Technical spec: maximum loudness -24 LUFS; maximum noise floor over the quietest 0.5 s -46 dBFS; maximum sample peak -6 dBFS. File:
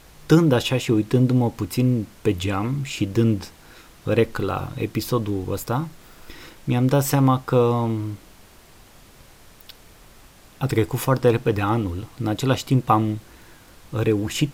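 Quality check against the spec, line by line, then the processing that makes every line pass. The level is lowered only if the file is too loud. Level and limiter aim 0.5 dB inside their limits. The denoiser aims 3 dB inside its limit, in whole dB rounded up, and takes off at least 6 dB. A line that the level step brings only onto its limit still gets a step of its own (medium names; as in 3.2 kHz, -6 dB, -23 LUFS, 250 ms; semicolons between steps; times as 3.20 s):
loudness -22.0 LUFS: fail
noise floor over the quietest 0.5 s -49 dBFS: pass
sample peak -3.0 dBFS: fail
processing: trim -2.5 dB; peak limiter -6.5 dBFS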